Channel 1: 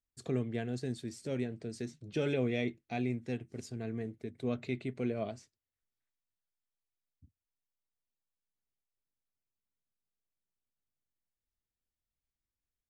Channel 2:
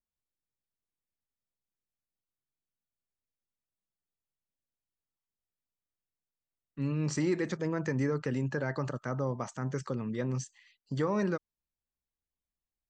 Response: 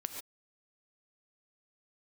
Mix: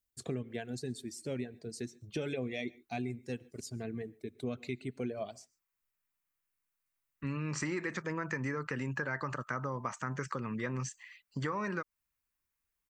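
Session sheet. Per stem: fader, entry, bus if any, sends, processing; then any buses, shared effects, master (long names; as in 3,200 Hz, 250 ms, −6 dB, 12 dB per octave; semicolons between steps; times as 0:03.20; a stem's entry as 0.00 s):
+0.5 dB, 0.00 s, send −17 dB, reverb reduction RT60 1.8 s
−0.5 dB, 0.45 s, no send, flat-topped bell 1,600 Hz +9.5 dB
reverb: on, pre-delay 3 ms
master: high-shelf EQ 8,500 Hz +10 dB; downward compressor 4 to 1, threshold −33 dBFS, peak gain reduction 8.5 dB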